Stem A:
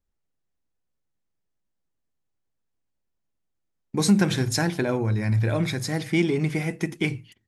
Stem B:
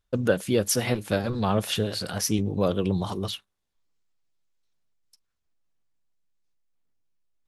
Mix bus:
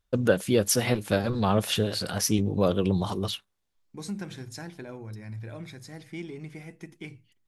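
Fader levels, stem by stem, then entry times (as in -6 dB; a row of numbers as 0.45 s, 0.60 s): -16.0 dB, +0.5 dB; 0.00 s, 0.00 s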